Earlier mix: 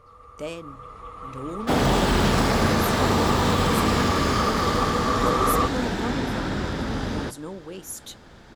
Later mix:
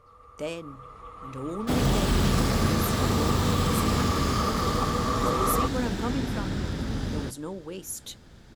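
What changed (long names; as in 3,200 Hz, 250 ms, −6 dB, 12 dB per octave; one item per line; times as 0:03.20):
first sound −4.0 dB
second sound: add drawn EQ curve 120 Hz 0 dB, 920 Hz −10 dB, 14,000 Hz +1 dB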